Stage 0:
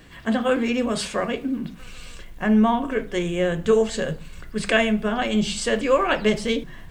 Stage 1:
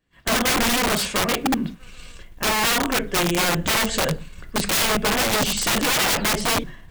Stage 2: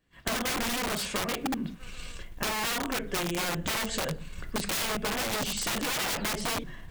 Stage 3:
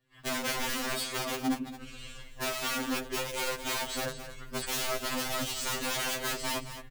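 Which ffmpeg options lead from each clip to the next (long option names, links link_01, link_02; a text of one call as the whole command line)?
ffmpeg -i in.wav -af "agate=range=-33dB:threshold=-31dB:ratio=3:detection=peak,aeval=exprs='(mod(9.44*val(0)+1,2)-1)/9.44':channel_layout=same,volume=4.5dB" out.wav
ffmpeg -i in.wav -af "acompressor=threshold=-29dB:ratio=6" out.wav
ffmpeg -i in.wav -filter_complex "[0:a]asplit=2[link_01][link_02];[link_02]aecho=0:1:217:0.266[link_03];[link_01][link_03]amix=inputs=2:normalize=0,afftfilt=real='re*2.45*eq(mod(b,6),0)':imag='im*2.45*eq(mod(b,6),0)':win_size=2048:overlap=0.75" out.wav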